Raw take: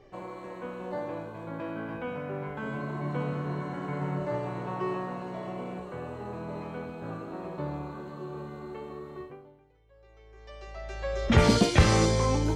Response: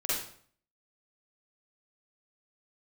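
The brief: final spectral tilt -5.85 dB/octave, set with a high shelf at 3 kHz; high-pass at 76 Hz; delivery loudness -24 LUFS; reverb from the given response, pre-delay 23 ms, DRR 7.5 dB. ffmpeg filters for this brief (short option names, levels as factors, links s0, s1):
-filter_complex "[0:a]highpass=76,highshelf=f=3000:g=-6,asplit=2[s0][s1];[1:a]atrim=start_sample=2205,adelay=23[s2];[s1][s2]afir=irnorm=-1:irlink=0,volume=0.188[s3];[s0][s3]amix=inputs=2:normalize=0,volume=2.24"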